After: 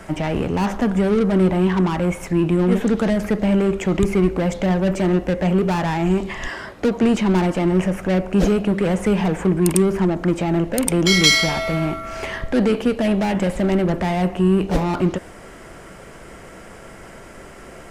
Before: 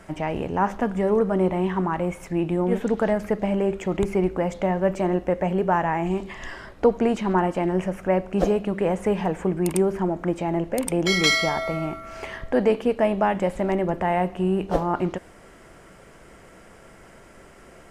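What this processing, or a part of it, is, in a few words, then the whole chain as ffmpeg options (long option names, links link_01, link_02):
one-band saturation: -filter_complex "[0:a]asettb=1/sr,asplit=3[link_01][link_02][link_03];[link_01]atrim=end=6.484[link_04];[link_02]atrim=start=6.48:end=7.03,asetpts=PTS-STARTPTS,afade=type=in:duration=0.004:curve=qsin,afade=type=out:start_time=0.546:duration=0.004:curve=qsin,highpass=frequency=130:poles=1[link_05];[link_03]atrim=start=7.026[link_06];[link_04][link_05]acrossfade=duration=0.004:curve1=hsin:curve2=qsin[link_07];[link_07][link_06]acrossfade=duration=0.004:curve1=qsin:curve2=hsin,acrossover=split=300|2500[link_08][link_09][link_10];[link_09]asoftclip=type=tanh:threshold=-31.5dB[link_11];[link_08][link_11][link_10]amix=inputs=3:normalize=0,volume=8.5dB"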